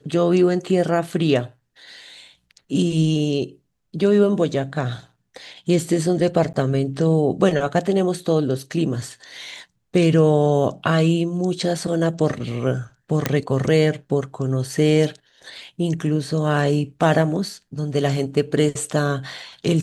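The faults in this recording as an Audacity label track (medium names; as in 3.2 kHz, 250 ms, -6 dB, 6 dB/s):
6.530000	6.540000	dropout 9.7 ms
13.260000	13.260000	pop -4 dBFS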